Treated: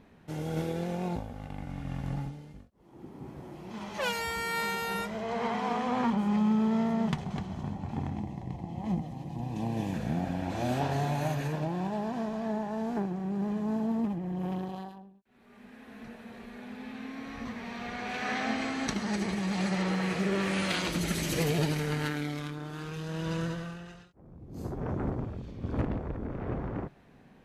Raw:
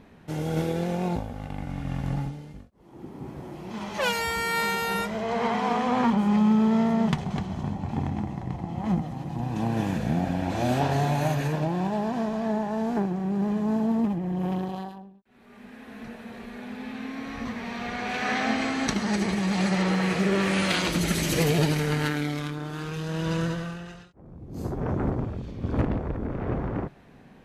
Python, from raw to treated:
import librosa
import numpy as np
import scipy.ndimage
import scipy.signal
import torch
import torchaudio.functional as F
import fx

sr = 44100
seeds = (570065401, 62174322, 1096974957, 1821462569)

y = fx.peak_eq(x, sr, hz=1400.0, db=-14.5, octaves=0.39, at=(8.17, 9.94))
y = y * librosa.db_to_amplitude(-5.5)